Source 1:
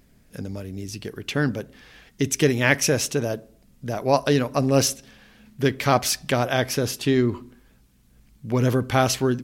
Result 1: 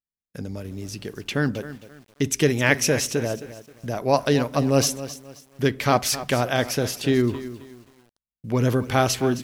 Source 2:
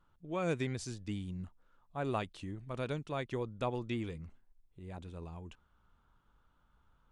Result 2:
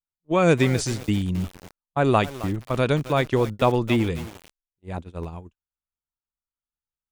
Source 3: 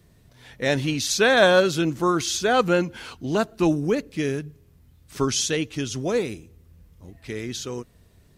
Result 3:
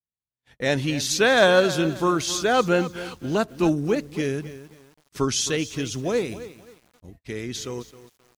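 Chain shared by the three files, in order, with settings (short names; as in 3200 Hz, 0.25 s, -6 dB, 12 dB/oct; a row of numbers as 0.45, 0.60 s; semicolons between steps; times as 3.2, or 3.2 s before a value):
gate -44 dBFS, range -47 dB; lo-fi delay 0.265 s, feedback 35%, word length 7-bit, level -14 dB; match loudness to -23 LUFS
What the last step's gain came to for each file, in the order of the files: -0.5, +16.0, -0.5 dB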